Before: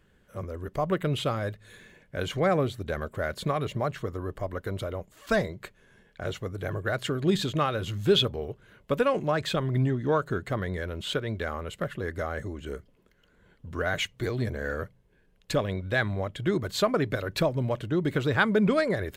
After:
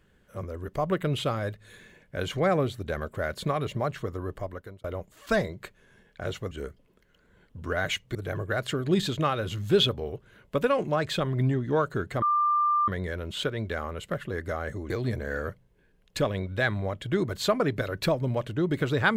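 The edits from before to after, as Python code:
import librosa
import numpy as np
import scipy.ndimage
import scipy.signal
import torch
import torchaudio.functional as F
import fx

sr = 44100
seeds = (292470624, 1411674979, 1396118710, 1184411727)

y = fx.edit(x, sr, fx.fade_out_span(start_s=4.34, length_s=0.5),
    fx.insert_tone(at_s=10.58, length_s=0.66, hz=1190.0, db=-20.5),
    fx.move(start_s=12.6, length_s=1.64, to_s=6.51), tone=tone)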